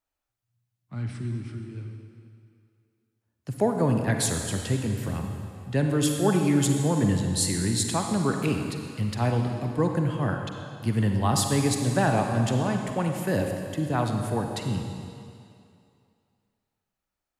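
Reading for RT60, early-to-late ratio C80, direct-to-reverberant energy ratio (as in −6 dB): 2.5 s, 4.5 dB, 3.0 dB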